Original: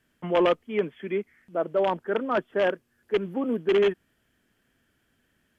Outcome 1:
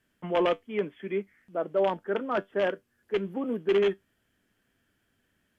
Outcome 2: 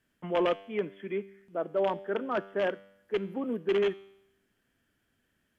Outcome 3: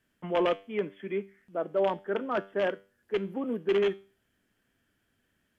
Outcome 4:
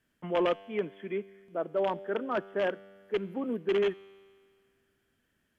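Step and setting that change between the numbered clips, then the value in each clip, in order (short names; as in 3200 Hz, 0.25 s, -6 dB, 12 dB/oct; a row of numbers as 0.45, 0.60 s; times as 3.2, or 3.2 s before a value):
resonator, decay: 0.15, 0.83, 0.37, 2 s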